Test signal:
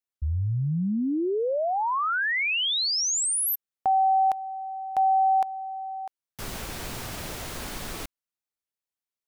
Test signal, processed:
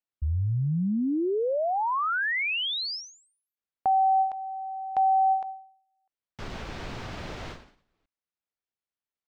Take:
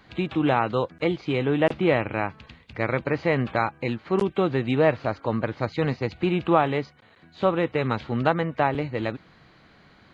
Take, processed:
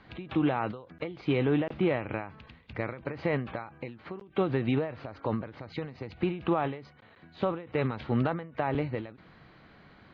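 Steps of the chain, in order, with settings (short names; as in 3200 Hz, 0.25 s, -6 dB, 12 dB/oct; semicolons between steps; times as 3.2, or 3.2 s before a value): limiter -16.5 dBFS; air absorption 170 m; ending taper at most 110 dB/s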